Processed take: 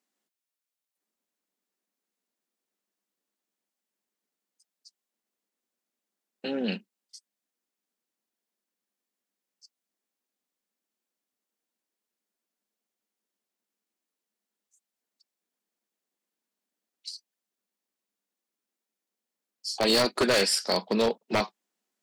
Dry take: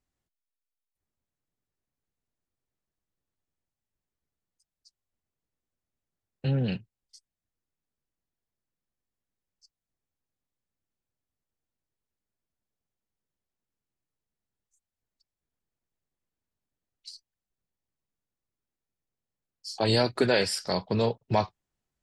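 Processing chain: elliptic high-pass 200 Hz; treble shelf 2 kHz +4.5 dB; wavefolder -18.5 dBFS; trim +2.5 dB

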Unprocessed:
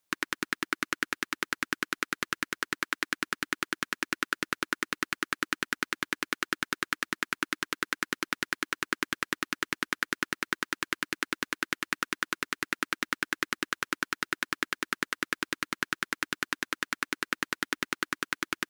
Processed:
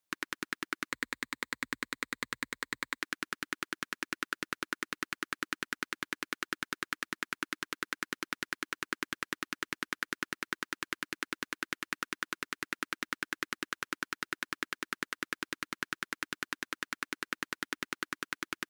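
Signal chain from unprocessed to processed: 0.89–3.00 s: rippled EQ curve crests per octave 1, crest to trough 8 dB; trim -6 dB

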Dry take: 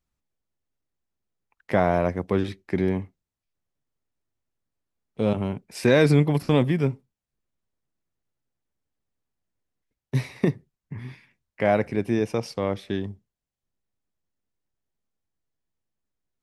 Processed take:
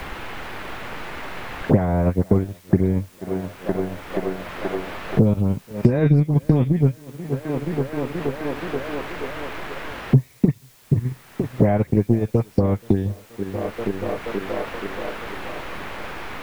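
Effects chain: RIAA curve playback; phase dispersion highs, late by 92 ms, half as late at 1.8 kHz; on a send: thinning echo 478 ms, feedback 64%, high-pass 240 Hz, level -17 dB; on the sum: transient shaper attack +9 dB, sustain -10 dB; in parallel at -11.5 dB: word length cut 6-bit, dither triangular; on the sum: three bands compressed up and down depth 100%; trim -6.5 dB

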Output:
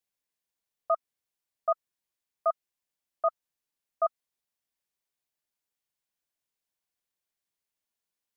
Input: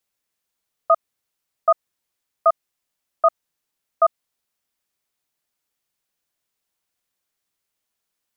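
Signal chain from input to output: band-stop 1.3 kHz, Q 13; trim -9 dB

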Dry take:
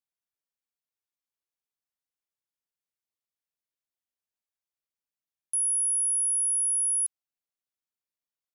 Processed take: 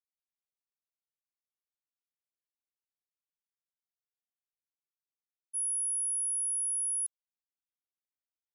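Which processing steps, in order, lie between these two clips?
expander -21 dBFS

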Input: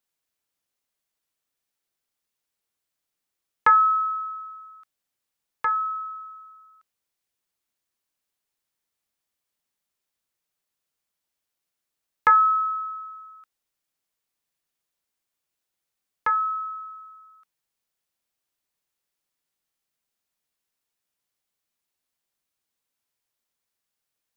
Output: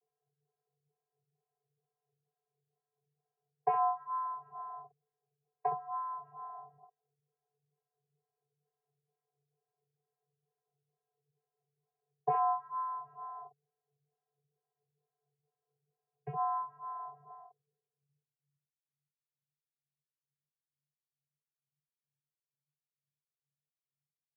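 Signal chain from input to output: dynamic bell 1.3 kHz, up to +3 dB, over -29 dBFS; compression 2:1, threshold -43 dBFS, peak gain reduction 17 dB; low-pass sweep 990 Hz -> 210 Hz, 17.55–18.66 s; saturation -23 dBFS, distortion -18 dB; formant shift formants -5 st; vocoder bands 32, saw 294 Hz; early reflections 14 ms -4 dB, 64 ms -5.5 dB; mistuned SSB -150 Hz 200–2000 Hz; lamp-driven phase shifter 2.2 Hz; trim +4.5 dB

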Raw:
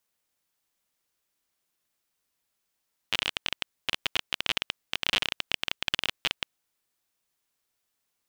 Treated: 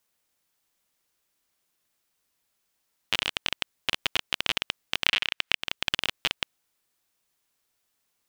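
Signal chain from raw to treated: 5.06–5.55 s: peaking EQ 2.2 kHz +11 dB 2 oct; compression 12:1, threshold -23 dBFS, peak gain reduction 13.5 dB; trim +3.5 dB

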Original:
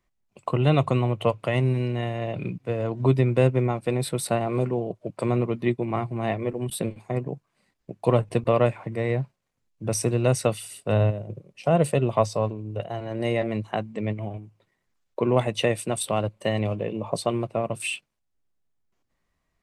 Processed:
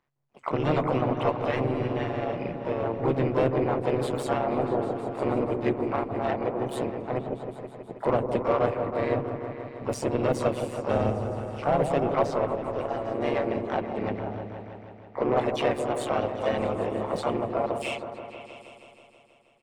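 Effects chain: harmony voices -3 st -7 dB, +3 st -9 dB, +12 st -14 dB; AM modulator 140 Hz, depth 70%; overdrive pedal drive 19 dB, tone 1 kHz, clips at -5.5 dBFS; on a send: delay with an opening low-pass 160 ms, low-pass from 750 Hz, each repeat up 1 oct, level -6 dB; on the sum: trim -5 dB

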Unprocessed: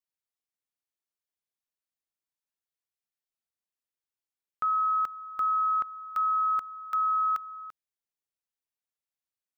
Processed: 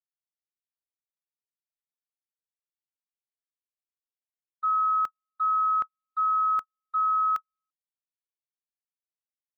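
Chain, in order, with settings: gate -28 dBFS, range -52 dB; trim +2 dB

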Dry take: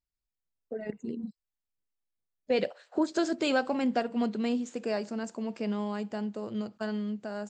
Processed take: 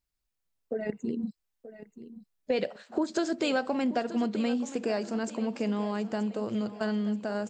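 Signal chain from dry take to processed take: compression 2.5:1, threshold -33 dBFS, peak gain reduction 8 dB; on a send: feedback delay 930 ms, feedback 43%, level -14.5 dB; on the sum: trim +5.5 dB

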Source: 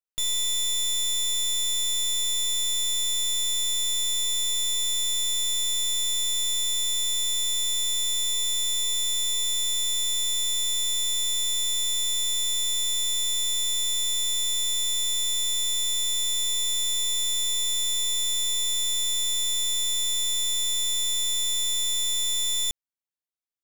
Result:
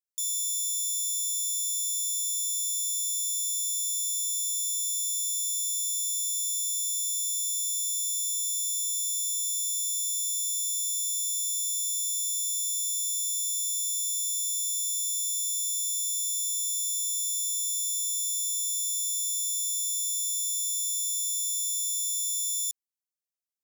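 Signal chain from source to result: inverse Chebyshev high-pass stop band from 2.4 kHz, stop band 40 dB

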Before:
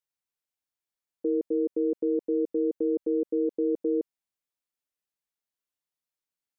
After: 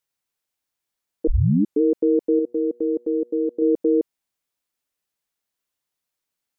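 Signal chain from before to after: 1.27 s: tape start 0.54 s; 2.39–3.62 s: feedback comb 120 Hz, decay 1.1 s, harmonics all, mix 40%; trim +8 dB

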